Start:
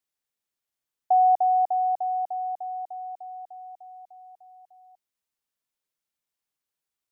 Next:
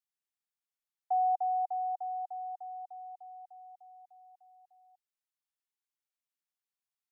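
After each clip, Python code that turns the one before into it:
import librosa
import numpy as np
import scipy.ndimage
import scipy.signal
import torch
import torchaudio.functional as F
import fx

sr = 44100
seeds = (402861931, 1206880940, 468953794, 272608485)

y = scipy.signal.sosfilt(scipy.signal.ellip(4, 1.0, 40, 740.0, 'highpass', fs=sr, output='sos'), x)
y = y * 10.0 ** (-8.5 / 20.0)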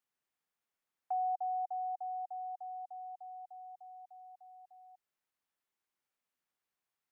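y = fx.band_squash(x, sr, depth_pct=40)
y = y * 10.0 ** (-4.0 / 20.0)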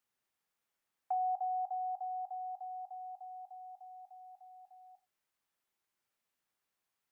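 y = fx.rev_gated(x, sr, seeds[0], gate_ms=120, shape='falling', drr_db=9.5)
y = y * 10.0 ** (2.5 / 20.0)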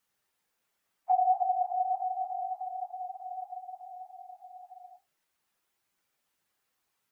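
y = fx.phase_scramble(x, sr, seeds[1], window_ms=50)
y = y * 10.0 ** (7.0 / 20.0)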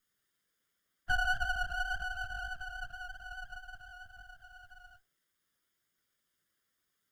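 y = fx.lower_of_two(x, sr, delay_ms=0.58)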